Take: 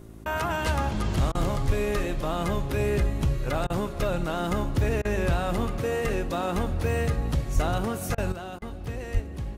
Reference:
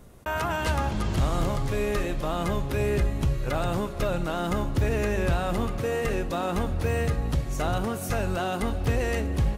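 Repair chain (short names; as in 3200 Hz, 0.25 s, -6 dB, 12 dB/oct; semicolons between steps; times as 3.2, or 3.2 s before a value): de-hum 54.6 Hz, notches 7; 1.66–1.78 HPF 140 Hz 24 dB/oct; 7.54–7.66 HPF 140 Hz 24 dB/oct; 9.13–9.25 HPF 140 Hz 24 dB/oct; interpolate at 1.32/3.67/5.02/8.15/8.59, 28 ms; gain 0 dB, from 8.32 s +9.5 dB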